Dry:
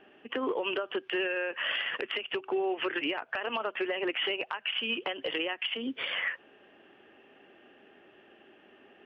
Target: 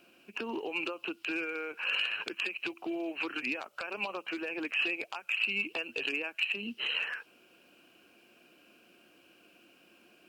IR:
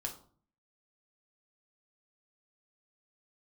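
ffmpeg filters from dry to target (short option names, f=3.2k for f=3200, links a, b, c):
-af "asetrate=38808,aresample=44100,aexciter=amount=14.5:drive=6.1:freq=3.2k,volume=-6dB"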